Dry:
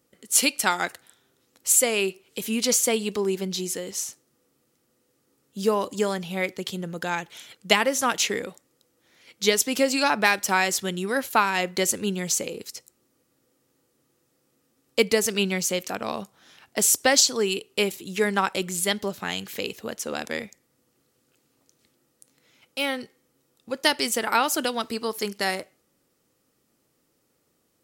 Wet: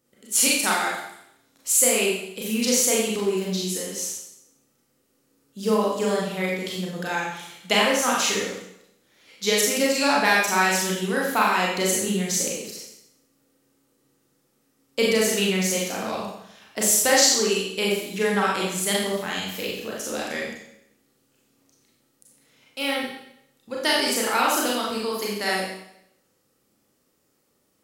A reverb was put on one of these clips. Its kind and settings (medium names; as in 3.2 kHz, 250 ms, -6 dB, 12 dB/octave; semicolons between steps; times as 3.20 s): Schroeder reverb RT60 0.76 s, combs from 29 ms, DRR -4.5 dB; trim -4 dB